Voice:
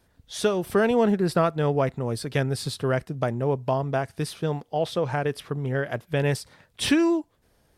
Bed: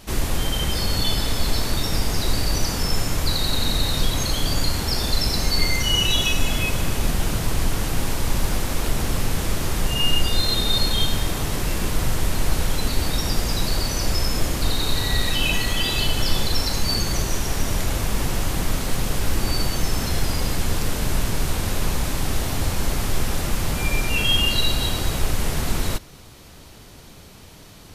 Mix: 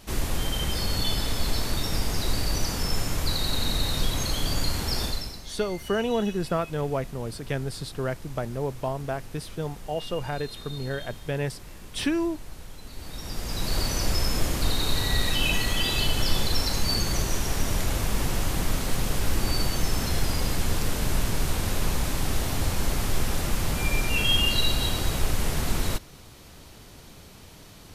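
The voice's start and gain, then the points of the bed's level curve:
5.15 s, −5.0 dB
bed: 0:05.04 −4.5 dB
0:05.43 −20.5 dB
0:12.83 −20.5 dB
0:13.79 −3 dB

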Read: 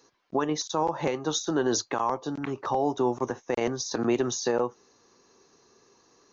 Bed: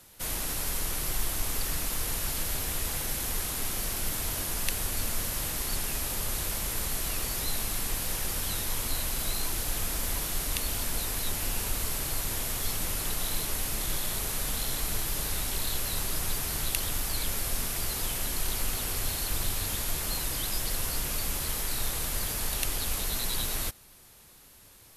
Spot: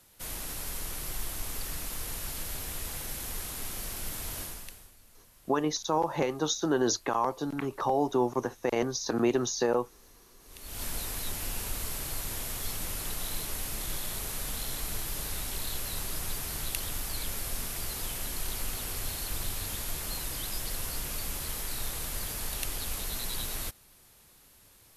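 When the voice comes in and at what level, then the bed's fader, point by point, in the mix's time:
5.15 s, −1.0 dB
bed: 0:04.43 −5.5 dB
0:04.98 −27.5 dB
0:10.39 −27.5 dB
0:10.83 −4 dB

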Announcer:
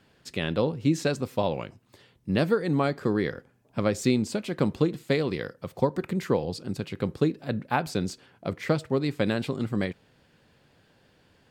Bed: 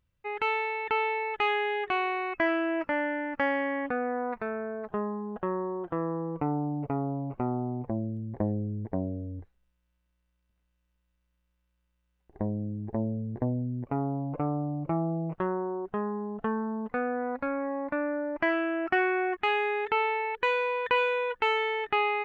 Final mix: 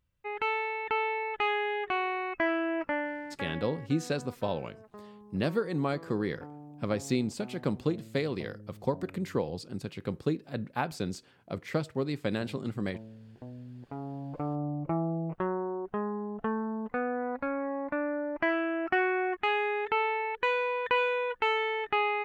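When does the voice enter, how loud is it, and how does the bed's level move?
3.05 s, −5.5 dB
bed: 0:02.92 −2 dB
0:03.79 −17 dB
0:13.36 −17 dB
0:14.66 −1.5 dB

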